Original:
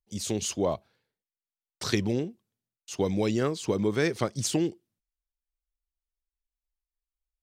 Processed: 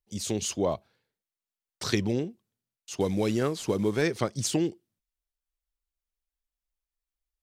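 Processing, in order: 3.00–4.02 s: CVSD coder 64 kbps

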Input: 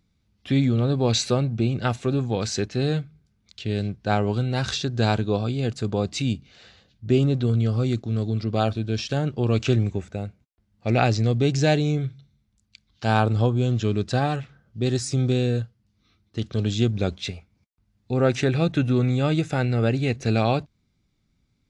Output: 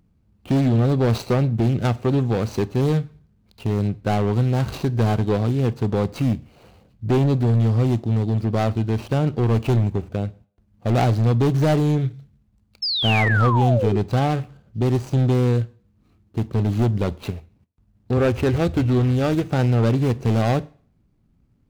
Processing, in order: median filter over 25 samples; 18.17–19.44 s: resonant low shelf 110 Hz +9 dB, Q 3; in parallel at -3 dB: compression, threshold -30 dBFS, peak gain reduction 14.5 dB; on the sum: hard clipper -17 dBFS, distortion -13 dB; 12.82–13.98 s: painted sound fall 350–5400 Hz -26 dBFS; on a send at -19 dB: reverberation RT60 0.45 s, pre-delay 17 ms; on the sum: trim +3 dB

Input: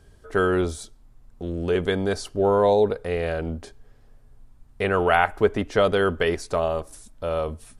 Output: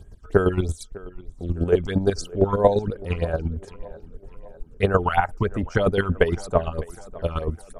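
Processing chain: reverb removal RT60 0.57 s; phase shifter stages 8, 3.1 Hz, lowest notch 490–4900 Hz; square tremolo 8.7 Hz, depth 65%, duty 25%; bass shelf 130 Hz +8 dB; tape echo 604 ms, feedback 58%, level -19 dB, low-pass 3.2 kHz; trim +6 dB

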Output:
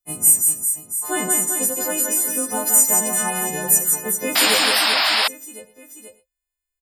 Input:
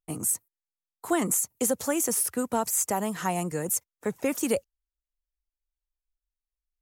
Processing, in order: partials quantised in pitch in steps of 3 st; 1.20–2.74 s: compression 2.5:1, threshold -20 dBFS, peak gain reduction 7 dB; reverse bouncing-ball echo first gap 170 ms, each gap 1.3×, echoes 5; gated-style reverb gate 140 ms flat, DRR 10.5 dB; 4.35–5.28 s: painted sound noise 580–5400 Hz -18 dBFS

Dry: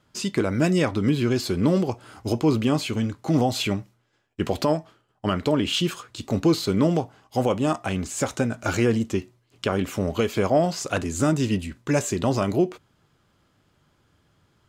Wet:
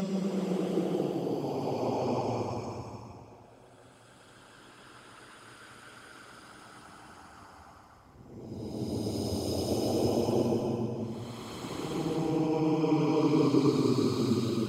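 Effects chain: Paulstretch 19×, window 0.10 s, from 1.79 s; harmonic-percussive split harmonic -11 dB

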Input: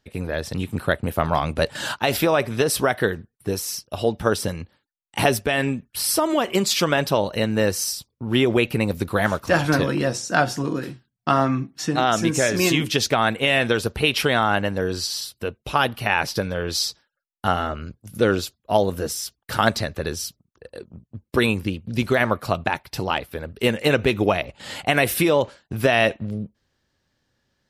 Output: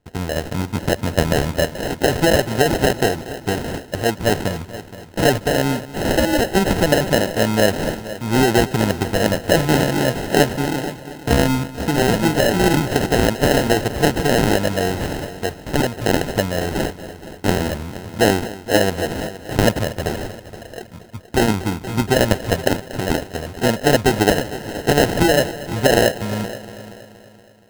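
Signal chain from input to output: sample-and-hold 38×; multi-head delay 236 ms, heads first and second, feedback 43%, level -17 dB; trim +3.5 dB

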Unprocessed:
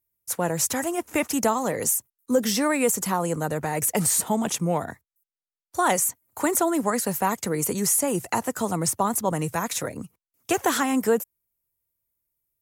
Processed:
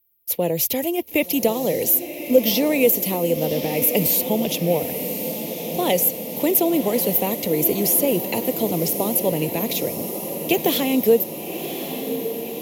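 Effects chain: FFT filter 110 Hz 0 dB, 250 Hz +3 dB, 530 Hz +7 dB, 1.5 kHz -19 dB, 2.2 kHz +4 dB, 3.1 kHz +9 dB, 4.8 kHz +3 dB, 8.6 kHz -11 dB, 13 kHz +14 dB; on a send: echo that smears into a reverb 1126 ms, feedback 69%, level -9 dB

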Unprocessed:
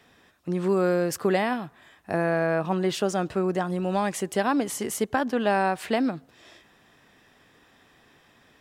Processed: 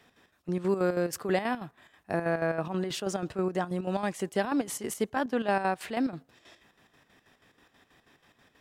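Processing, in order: square tremolo 6.2 Hz, depth 60%, duty 60%; trim -3 dB

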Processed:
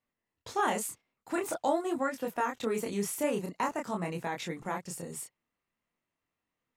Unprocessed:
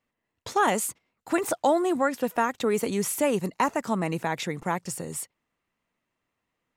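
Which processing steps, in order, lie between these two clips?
chorus 0.47 Hz, depth 7.8 ms; trim -3.5 dB

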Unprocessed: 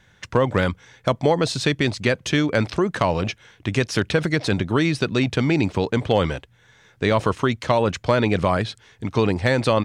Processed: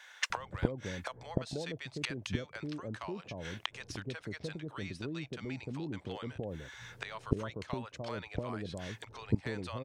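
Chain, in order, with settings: inverted gate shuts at -19 dBFS, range -24 dB; bands offset in time highs, lows 300 ms, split 680 Hz; trim +4.5 dB

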